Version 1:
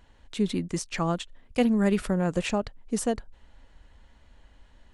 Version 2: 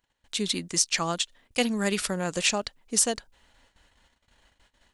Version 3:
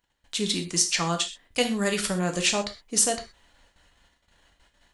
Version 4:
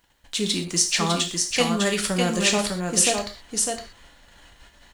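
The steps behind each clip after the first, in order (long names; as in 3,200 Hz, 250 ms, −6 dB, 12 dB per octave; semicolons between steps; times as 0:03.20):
dynamic equaliser 5,100 Hz, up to +8 dB, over −51 dBFS, Q 0.72; noise gate −52 dBFS, range −18 dB; spectral tilt +2.5 dB per octave
reverb whose tail is shaped and stops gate 150 ms falling, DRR 4 dB
mu-law and A-law mismatch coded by mu; on a send: single-tap delay 603 ms −4 dB; on the sum: level +1.5 dB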